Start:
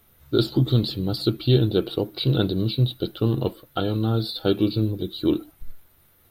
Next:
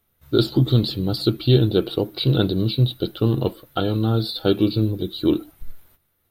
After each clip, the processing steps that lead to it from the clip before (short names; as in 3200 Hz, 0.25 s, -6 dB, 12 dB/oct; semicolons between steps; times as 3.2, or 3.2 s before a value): gate -53 dBFS, range -13 dB; gain +2.5 dB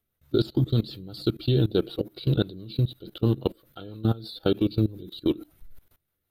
rotary speaker horn 6 Hz; level quantiser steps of 20 dB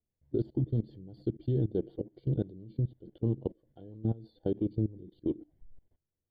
running mean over 34 samples; gain -6.5 dB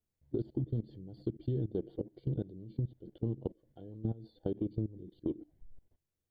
compressor, threshold -30 dBFS, peak gain reduction 6 dB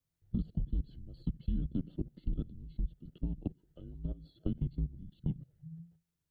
frequency shift -170 Hz; gain +1 dB